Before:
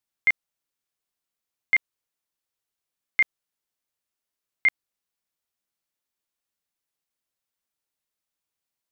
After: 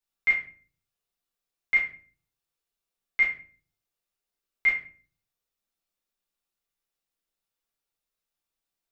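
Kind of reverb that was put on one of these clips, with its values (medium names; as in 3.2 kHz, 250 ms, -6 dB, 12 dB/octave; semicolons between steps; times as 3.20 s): simulated room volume 33 m³, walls mixed, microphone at 1.1 m; trim -7.5 dB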